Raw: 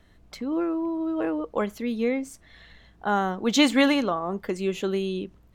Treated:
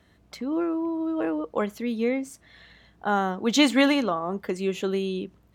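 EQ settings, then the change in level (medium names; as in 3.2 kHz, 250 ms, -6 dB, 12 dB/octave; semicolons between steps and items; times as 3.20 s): high-pass 72 Hz; 0.0 dB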